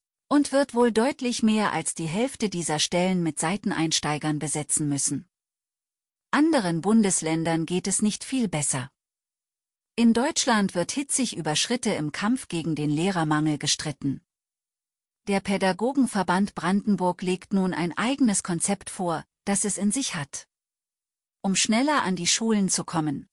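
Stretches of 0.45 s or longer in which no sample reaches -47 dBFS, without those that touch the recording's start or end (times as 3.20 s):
5.23–6.33 s
8.87–9.98 s
14.19–15.27 s
20.43–21.44 s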